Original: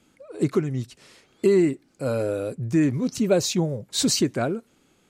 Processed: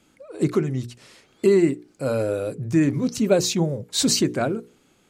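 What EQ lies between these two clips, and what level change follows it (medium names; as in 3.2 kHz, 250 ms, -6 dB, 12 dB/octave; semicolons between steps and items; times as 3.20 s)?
hum notches 60/120/180/240/300/360/420/480 Hz; +2.0 dB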